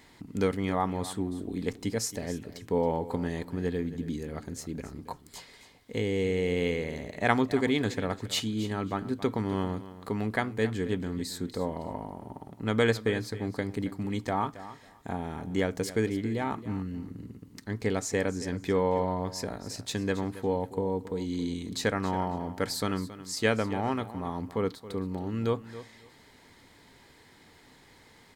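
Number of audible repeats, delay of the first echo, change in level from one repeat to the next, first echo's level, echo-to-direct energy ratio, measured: 2, 273 ms, −14.5 dB, −15.0 dB, −15.0 dB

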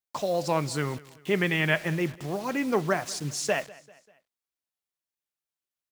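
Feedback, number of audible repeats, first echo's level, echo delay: 47%, 3, −21.5 dB, 196 ms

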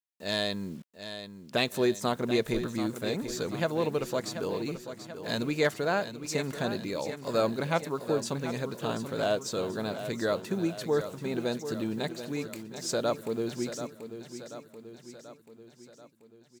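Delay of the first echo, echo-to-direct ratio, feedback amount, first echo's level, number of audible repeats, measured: 735 ms, −9.0 dB, 56%, −10.5 dB, 5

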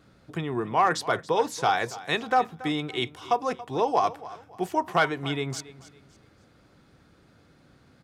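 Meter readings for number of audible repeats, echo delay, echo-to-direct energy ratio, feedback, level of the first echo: 2, 280 ms, −17.0 dB, 33%, −17.5 dB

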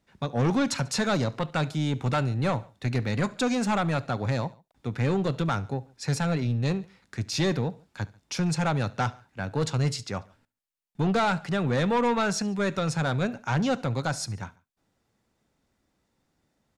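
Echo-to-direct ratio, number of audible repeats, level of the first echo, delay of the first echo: −21.5 dB, 2, −22.5 dB, 71 ms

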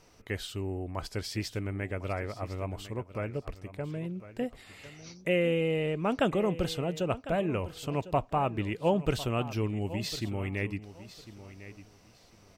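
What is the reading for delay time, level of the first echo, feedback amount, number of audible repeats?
1,052 ms, −15.0 dB, 22%, 2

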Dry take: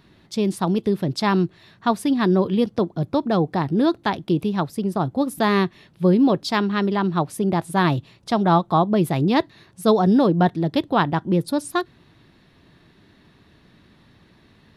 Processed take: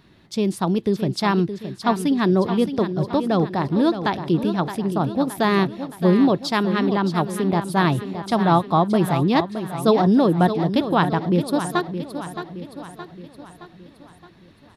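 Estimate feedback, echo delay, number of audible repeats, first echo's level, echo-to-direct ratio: 52%, 619 ms, 5, −10.0 dB, −8.5 dB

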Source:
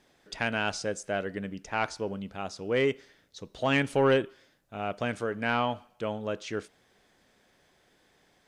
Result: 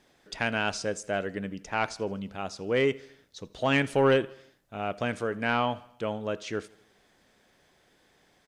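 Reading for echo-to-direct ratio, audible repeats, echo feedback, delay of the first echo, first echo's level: −22.0 dB, 3, 54%, 81 ms, −23.5 dB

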